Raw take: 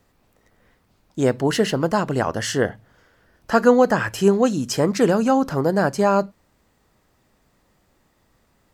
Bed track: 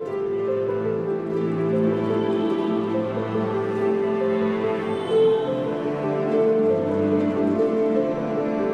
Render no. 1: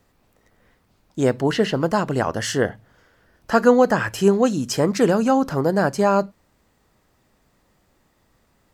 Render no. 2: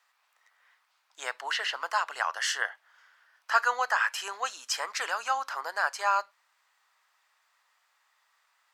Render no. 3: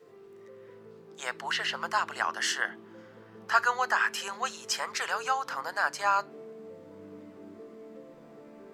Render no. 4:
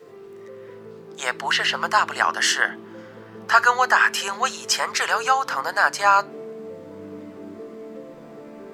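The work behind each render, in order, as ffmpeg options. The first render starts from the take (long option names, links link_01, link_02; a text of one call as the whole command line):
ffmpeg -i in.wav -filter_complex "[0:a]asettb=1/sr,asplit=3[link_01][link_02][link_03];[link_01]atrim=end=1.424[link_04];[link_02]atrim=start=1.42:end=1.89,asetpts=PTS-STARTPTS,afade=type=in:duration=0.004:curve=qsin,afade=type=out:start_time=0.466:duration=0.004:curve=qsin,acrossover=split=5100[link_05][link_06];[link_06]acompressor=threshold=-44dB:ratio=4:attack=1:release=60[link_07];[link_05][link_07]amix=inputs=2:normalize=0[link_08];[link_03]atrim=start=1.886[link_09];[link_04][link_08]acrossfade=duration=0.004:curve1=hsin:curve2=qsin[link_10];[link_10][link_09]acrossfade=duration=0.004:curve1=qsin:curve2=hsin" out.wav
ffmpeg -i in.wav -af "highpass=frequency=1000:width=0.5412,highpass=frequency=1000:width=1.3066,highshelf=frequency=7500:gain=-10" out.wav
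ffmpeg -i in.wav -i bed.wav -filter_complex "[1:a]volume=-26.5dB[link_01];[0:a][link_01]amix=inputs=2:normalize=0" out.wav
ffmpeg -i in.wav -af "volume=9.5dB,alimiter=limit=-1dB:level=0:latency=1" out.wav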